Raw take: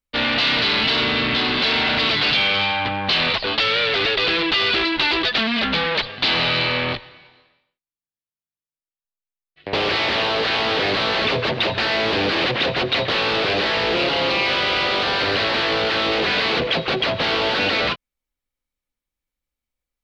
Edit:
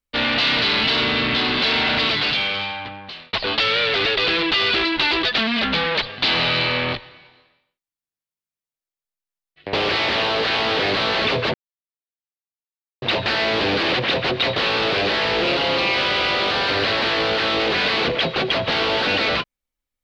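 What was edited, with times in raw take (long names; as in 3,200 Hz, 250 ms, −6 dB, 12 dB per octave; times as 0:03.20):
0:01.98–0:03.33: fade out
0:11.54: splice in silence 1.48 s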